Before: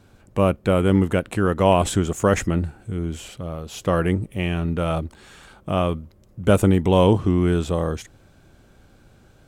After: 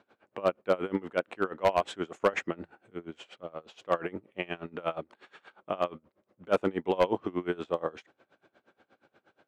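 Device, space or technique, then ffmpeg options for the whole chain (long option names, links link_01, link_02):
helicopter radio: -af "highpass=400,lowpass=2800,aeval=exprs='val(0)*pow(10,-24*(0.5-0.5*cos(2*PI*8.4*n/s))/20)':channel_layout=same,asoftclip=type=hard:threshold=-15.5dB"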